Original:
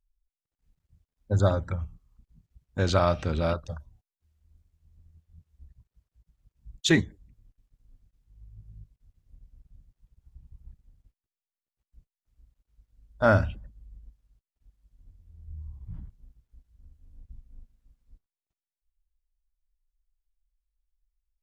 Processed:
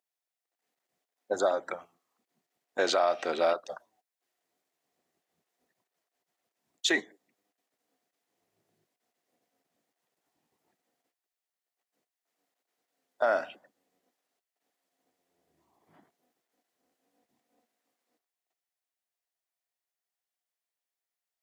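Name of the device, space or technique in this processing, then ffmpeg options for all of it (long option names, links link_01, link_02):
laptop speaker: -af "highpass=frequency=350:width=0.5412,highpass=frequency=350:width=1.3066,equalizer=frequency=710:width_type=o:width=0.23:gain=10,equalizer=frequency=1900:width_type=o:width=0.26:gain=5,alimiter=limit=-19dB:level=0:latency=1:release=218,volume=3.5dB"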